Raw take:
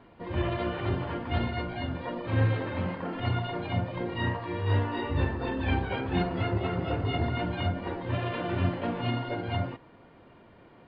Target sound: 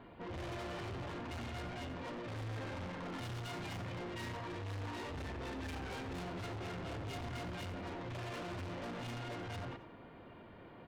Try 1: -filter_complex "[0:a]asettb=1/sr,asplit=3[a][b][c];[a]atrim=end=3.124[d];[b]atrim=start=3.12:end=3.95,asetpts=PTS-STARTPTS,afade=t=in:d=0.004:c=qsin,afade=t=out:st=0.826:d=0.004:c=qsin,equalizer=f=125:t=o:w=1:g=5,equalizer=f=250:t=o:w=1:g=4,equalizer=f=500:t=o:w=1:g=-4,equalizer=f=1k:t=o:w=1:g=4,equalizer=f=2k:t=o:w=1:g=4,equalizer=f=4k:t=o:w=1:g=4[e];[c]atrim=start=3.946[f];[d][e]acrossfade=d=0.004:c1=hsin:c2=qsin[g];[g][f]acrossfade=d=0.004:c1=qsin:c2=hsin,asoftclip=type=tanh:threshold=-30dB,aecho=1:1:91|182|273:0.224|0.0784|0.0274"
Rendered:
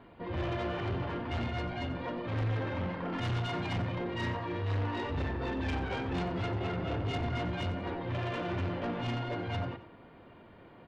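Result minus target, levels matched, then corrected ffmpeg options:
soft clip: distortion -5 dB
-filter_complex "[0:a]asettb=1/sr,asplit=3[a][b][c];[a]atrim=end=3.124[d];[b]atrim=start=3.12:end=3.95,asetpts=PTS-STARTPTS,afade=t=in:d=0.004:c=qsin,afade=t=out:st=0.826:d=0.004:c=qsin,equalizer=f=125:t=o:w=1:g=5,equalizer=f=250:t=o:w=1:g=4,equalizer=f=500:t=o:w=1:g=-4,equalizer=f=1k:t=o:w=1:g=4,equalizer=f=2k:t=o:w=1:g=4,equalizer=f=4k:t=o:w=1:g=4[e];[c]atrim=start=3.946[f];[d][e]acrossfade=d=0.004:c1=hsin:c2=qsin[g];[g][f]acrossfade=d=0.004:c1=qsin:c2=hsin,asoftclip=type=tanh:threshold=-42dB,aecho=1:1:91|182|273:0.224|0.0784|0.0274"

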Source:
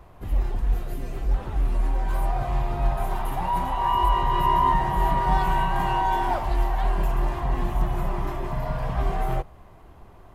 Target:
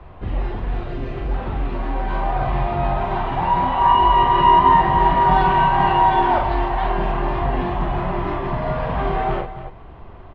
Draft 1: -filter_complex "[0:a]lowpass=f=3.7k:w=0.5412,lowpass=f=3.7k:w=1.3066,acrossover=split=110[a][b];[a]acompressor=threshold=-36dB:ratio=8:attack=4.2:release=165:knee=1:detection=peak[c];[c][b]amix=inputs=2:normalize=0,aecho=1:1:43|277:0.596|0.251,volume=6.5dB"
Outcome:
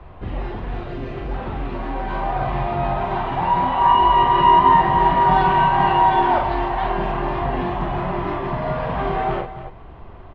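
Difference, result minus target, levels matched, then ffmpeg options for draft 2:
compressor: peak gain reduction +5.5 dB
-filter_complex "[0:a]lowpass=f=3.7k:w=0.5412,lowpass=f=3.7k:w=1.3066,acrossover=split=110[a][b];[a]acompressor=threshold=-29.5dB:ratio=8:attack=4.2:release=165:knee=1:detection=peak[c];[c][b]amix=inputs=2:normalize=0,aecho=1:1:43|277:0.596|0.251,volume=6.5dB"

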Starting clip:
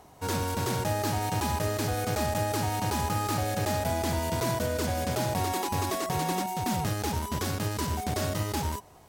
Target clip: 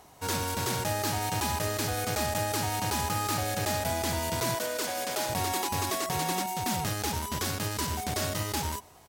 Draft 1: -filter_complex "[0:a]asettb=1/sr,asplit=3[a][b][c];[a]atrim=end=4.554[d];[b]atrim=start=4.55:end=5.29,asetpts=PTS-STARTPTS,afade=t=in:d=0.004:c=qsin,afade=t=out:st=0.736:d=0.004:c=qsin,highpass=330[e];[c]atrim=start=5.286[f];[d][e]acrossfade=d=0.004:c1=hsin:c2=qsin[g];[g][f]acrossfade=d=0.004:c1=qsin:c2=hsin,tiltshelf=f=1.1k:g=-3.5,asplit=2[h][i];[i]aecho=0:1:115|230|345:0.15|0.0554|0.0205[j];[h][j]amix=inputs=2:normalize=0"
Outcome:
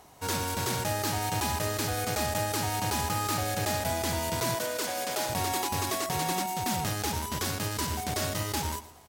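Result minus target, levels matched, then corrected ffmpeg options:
echo-to-direct +12 dB
-filter_complex "[0:a]asettb=1/sr,asplit=3[a][b][c];[a]atrim=end=4.554[d];[b]atrim=start=4.55:end=5.29,asetpts=PTS-STARTPTS,afade=t=in:d=0.004:c=qsin,afade=t=out:st=0.736:d=0.004:c=qsin,highpass=330[e];[c]atrim=start=5.286[f];[d][e]acrossfade=d=0.004:c1=hsin:c2=qsin[g];[g][f]acrossfade=d=0.004:c1=qsin:c2=hsin,tiltshelf=f=1.1k:g=-3.5,asplit=2[h][i];[i]aecho=0:1:115|230:0.0376|0.0139[j];[h][j]amix=inputs=2:normalize=0"

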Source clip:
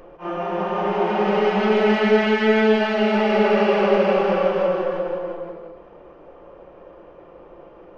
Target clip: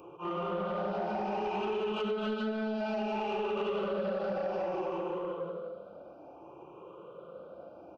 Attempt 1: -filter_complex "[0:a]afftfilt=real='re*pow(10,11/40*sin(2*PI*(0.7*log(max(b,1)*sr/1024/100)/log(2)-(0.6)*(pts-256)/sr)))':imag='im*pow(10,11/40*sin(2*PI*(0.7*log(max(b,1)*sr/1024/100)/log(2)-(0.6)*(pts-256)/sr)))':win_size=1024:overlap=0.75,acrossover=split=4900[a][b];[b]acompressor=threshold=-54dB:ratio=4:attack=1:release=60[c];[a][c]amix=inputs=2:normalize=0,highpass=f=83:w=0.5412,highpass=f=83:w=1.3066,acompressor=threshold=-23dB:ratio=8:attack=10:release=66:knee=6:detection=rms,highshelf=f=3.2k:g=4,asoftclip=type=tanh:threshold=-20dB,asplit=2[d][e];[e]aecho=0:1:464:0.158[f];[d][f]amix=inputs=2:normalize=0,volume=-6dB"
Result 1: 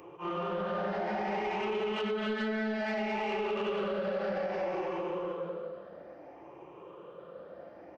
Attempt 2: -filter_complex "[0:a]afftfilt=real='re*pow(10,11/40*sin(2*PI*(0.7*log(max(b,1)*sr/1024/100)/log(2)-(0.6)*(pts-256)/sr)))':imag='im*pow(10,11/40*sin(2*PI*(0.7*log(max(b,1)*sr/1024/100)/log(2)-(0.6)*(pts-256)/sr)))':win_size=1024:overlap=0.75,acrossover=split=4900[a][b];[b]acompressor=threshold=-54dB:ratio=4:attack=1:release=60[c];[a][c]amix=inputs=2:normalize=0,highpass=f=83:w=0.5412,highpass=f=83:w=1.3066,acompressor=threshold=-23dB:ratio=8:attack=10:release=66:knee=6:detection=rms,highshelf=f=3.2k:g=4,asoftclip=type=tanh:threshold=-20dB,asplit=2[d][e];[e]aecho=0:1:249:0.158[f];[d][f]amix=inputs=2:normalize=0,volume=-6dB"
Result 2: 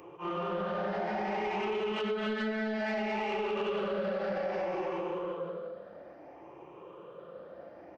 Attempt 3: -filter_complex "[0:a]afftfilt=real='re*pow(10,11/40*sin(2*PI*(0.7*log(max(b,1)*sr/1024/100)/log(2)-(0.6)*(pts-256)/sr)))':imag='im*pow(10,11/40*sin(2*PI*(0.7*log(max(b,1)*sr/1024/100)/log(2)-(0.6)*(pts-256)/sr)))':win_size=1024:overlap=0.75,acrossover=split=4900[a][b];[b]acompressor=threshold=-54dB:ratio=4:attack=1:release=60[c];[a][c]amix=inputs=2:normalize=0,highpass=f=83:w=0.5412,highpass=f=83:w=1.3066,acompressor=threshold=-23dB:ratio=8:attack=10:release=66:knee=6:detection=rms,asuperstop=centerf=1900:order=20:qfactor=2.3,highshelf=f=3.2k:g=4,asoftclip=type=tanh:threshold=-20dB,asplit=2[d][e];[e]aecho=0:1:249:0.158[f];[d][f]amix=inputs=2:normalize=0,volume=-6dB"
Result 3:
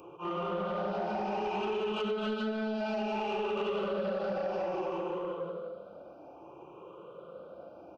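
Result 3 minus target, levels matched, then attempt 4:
8000 Hz band +3.0 dB
-filter_complex "[0:a]afftfilt=real='re*pow(10,11/40*sin(2*PI*(0.7*log(max(b,1)*sr/1024/100)/log(2)-(0.6)*(pts-256)/sr)))':imag='im*pow(10,11/40*sin(2*PI*(0.7*log(max(b,1)*sr/1024/100)/log(2)-(0.6)*(pts-256)/sr)))':win_size=1024:overlap=0.75,acrossover=split=4900[a][b];[b]acompressor=threshold=-54dB:ratio=4:attack=1:release=60[c];[a][c]amix=inputs=2:normalize=0,highpass=f=83:w=0.5412,highpass=f=83:w=1.3066,acompressor=threshold=-23dB:ratio=8:attack=10:release=66:knee=6:detection=rms,asuperstop=centerf=1900:order=20:qfactor=2.3,asoftclip=type=tanh:threshold=-20dB,asplit=2[d][e];[e]aecho=0:1:249:0.158[f];[d][f]amix=inputs=2:normalize=0,volume=-6dB"

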